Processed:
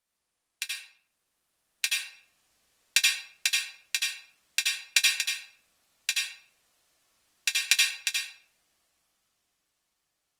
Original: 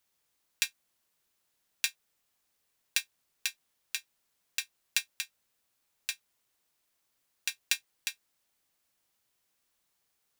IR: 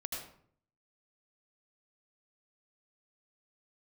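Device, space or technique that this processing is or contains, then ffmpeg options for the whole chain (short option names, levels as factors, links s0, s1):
speakerphone in a meeting room: -filter_complex "[0:a]lowpass=11000[s0];[1:a]atrim=start_sample=2205[s1];[s0][s1]afir=irnorm=-1:irlink=0,dynaudnorm=f=210:g=17:m=5.62" -ar 48000 -c:a libopus -b:a 32k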